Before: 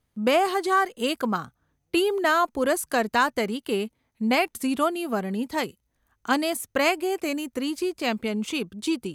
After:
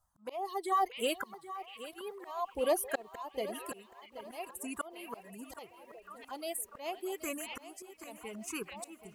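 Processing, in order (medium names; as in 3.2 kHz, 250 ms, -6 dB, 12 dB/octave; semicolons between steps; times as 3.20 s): coarse spectral quantiser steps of 15 dB; band-stop 2.3 kHz, Q 29; reverb removal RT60 1.2 s; graphic EQ 125/250/1000/2000/4000/8000 Hz -10/-10/+6/-3/-6/+5 dB; touch-sensitive phaser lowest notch 410 Hz, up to 1.5 kHz, full sweep at -21.5 dBFS; repeats whose band climbs or falls 641 ms, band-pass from 2.6 kHz, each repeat -0.7 oct, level -11 dB; slow attack 518 ms; bit-crushed delay 777 ms, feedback 35%, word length 10-bit, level -13.5 dB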